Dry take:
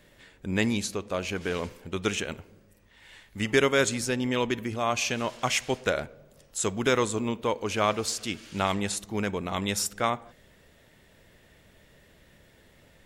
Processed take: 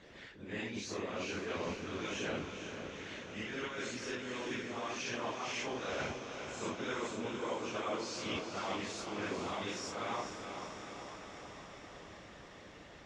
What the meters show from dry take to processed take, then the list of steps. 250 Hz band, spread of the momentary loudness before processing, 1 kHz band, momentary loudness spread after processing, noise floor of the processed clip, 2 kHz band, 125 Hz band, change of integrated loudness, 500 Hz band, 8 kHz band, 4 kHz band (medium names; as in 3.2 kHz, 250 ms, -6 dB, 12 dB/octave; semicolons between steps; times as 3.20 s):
-11.0 dB, 9 LU, -9.5 dB, 12 LU, -54 dBFS, -9.5 dB, -13.5 dB, -11.5 dB, -11.0 dB, -14.0 dB, -9.5 dB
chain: phase randomisation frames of 200 ms; high-pass 120 Hz 6 dB/octave; peaking EQ 6.1 kHz +7.5 dB 0.67 oct; reverse; compression 6:1, threshold -39 dBFS, peak gain reduction 18.5 dB; reverse; harmonic-percussive split harmonic -15 dB; distance through air 170 m; on a send: echo that smears into a reverb 462 ms, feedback 70%, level -7 dB; on the sum: trim +9 dB